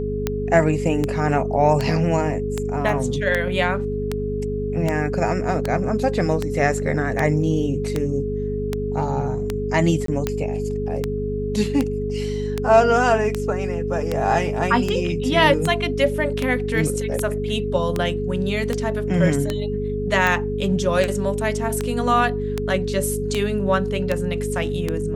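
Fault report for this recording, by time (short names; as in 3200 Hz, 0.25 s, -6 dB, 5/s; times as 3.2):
hum 50 Hz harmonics 5 -27 dBFS
tick 78 rpm -8 dBFS
tone 420 Hz -25 dBFS
2.89 gap 3.1 ms
10.06–10.08 gap 23 ms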